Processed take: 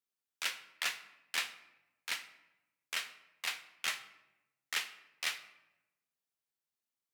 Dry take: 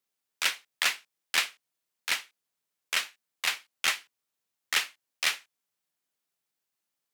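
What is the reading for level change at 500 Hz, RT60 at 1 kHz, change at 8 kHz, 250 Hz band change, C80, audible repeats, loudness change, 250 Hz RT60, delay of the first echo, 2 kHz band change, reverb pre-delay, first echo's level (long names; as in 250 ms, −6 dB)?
−8.5 dB, 0.90 s, −8.5 dB, −8.5 dB, 15.0 dB, no echo audible, −8.5 dB, 1.1 s, no echo audible, −8.5 dB, 4 ms, no echo audible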